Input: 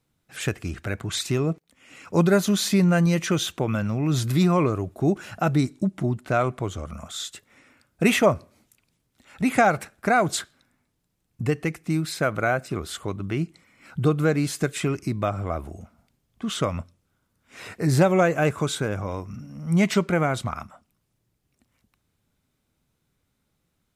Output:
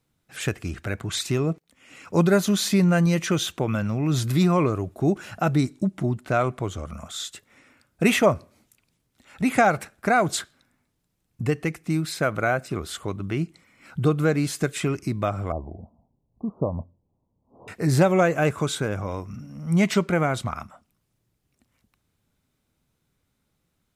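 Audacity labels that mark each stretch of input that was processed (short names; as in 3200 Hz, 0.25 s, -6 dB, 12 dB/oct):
15.520000	17.680000	steep low-pass 1000 Hz 72 dB/oct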